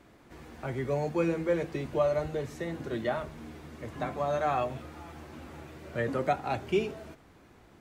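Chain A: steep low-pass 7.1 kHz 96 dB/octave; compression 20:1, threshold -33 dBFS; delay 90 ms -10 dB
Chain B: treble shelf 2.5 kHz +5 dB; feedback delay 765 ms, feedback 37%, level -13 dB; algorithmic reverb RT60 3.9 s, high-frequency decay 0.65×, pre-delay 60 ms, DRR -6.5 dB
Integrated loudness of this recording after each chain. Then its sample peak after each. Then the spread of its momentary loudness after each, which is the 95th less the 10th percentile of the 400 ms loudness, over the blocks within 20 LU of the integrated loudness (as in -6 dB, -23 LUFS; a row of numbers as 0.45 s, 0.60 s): -39.5 LUFS, -24.5 LUFS; -23.5 dBFS, -8.5 dBFS; 12 LU, 9 LU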